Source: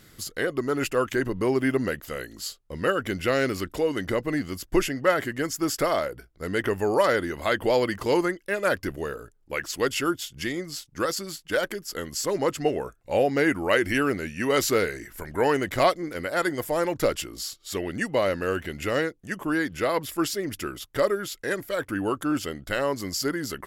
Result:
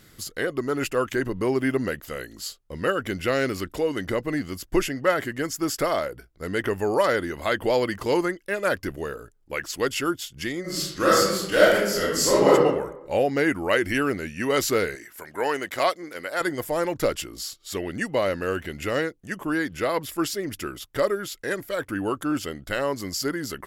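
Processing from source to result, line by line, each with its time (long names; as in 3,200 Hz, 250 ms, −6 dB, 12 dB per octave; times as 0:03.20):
0:10.61–0:12.51: thrown reverb, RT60 0.95 s, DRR −9 dB
0:14.95–0:16.41: high-pass filter 550 Hz 6 dB per octave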